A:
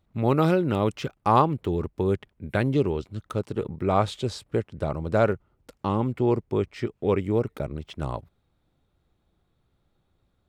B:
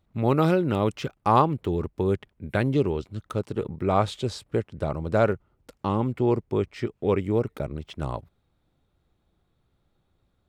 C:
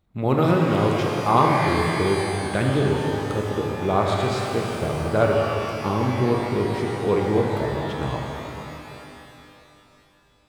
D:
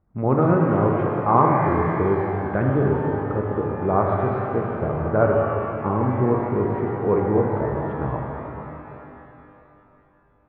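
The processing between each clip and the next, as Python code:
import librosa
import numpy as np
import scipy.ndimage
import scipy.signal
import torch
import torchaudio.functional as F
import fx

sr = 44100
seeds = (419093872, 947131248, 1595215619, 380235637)

y1 = x
y2 = fx.rev_shimmer(y1, sr, seeds[0], rt60_s=3.1, semitones=12, shimmer_db=-8, drr_db=-0.5)
y3 = scipy.signal.sosfilt(scipy.signal.butter(4, 1600.0, 'lowpass', fs=sr, output='sos'), y2)
y3 = y3 * librosa.db_to_amplitude(1.0)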